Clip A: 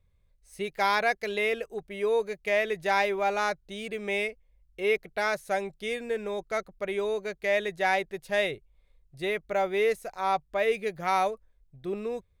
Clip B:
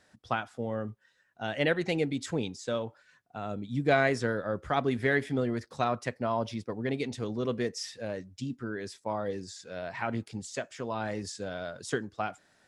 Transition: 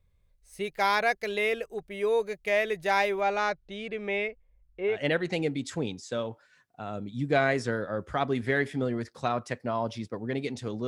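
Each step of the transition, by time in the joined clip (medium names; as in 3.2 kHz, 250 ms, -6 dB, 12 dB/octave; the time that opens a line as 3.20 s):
clip A
3.20–5.04 s: low-pass 6.3 kHz -> 1.6 kHz
4.95 s: go over to clip B from 1.51 s, crossfade 0.18 s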